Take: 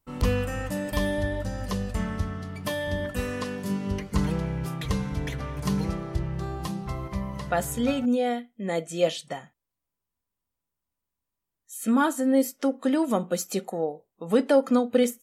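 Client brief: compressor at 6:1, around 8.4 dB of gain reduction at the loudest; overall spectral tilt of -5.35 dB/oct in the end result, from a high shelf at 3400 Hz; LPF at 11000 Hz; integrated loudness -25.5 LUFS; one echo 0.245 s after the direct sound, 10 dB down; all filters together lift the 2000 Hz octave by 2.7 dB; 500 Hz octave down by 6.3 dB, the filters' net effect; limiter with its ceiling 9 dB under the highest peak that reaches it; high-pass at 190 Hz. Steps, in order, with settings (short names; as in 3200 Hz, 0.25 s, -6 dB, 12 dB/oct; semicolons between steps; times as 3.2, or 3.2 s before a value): HPF 190 Hz; LPF 11000 Hz; bell 500 Hz -7 dB; bell 2000 Hz +6 dB; high shelf 3400 Hz -8 dB; compressor 6:1, threshold -29 dBFS; limiter -25.5 dBFS; echo 0.245 s -10 dB; gain +10 dB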